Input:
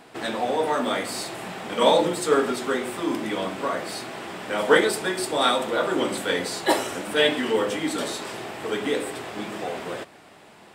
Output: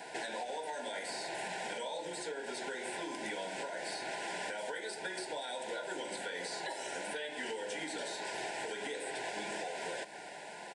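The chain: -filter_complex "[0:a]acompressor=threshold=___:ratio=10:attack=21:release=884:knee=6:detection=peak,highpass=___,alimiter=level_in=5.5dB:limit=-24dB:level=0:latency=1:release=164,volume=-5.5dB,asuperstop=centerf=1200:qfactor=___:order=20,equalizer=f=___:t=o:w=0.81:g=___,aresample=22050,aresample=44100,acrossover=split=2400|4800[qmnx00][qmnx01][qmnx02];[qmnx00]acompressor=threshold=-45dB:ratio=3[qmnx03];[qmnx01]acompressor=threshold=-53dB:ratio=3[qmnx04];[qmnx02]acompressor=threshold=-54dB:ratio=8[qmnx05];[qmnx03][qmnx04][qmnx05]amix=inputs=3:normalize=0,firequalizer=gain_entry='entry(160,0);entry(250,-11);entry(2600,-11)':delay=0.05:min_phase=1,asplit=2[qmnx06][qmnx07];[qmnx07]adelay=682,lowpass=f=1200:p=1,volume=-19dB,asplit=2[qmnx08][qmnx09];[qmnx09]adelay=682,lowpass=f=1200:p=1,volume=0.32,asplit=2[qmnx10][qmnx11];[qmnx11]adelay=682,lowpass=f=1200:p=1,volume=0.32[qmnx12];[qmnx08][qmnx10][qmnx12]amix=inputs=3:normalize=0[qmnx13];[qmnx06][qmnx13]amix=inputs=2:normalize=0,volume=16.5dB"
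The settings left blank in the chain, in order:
-28dB, 550, 3.2, 3200, -5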